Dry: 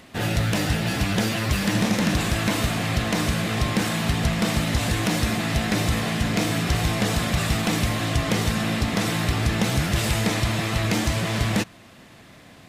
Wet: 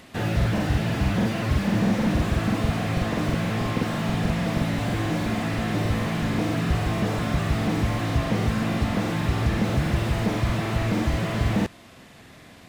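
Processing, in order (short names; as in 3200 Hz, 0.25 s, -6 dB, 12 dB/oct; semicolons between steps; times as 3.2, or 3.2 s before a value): crackling interface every 0.16 s, samples 2048, repeat, from 0.37; slew limiter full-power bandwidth 53 Hz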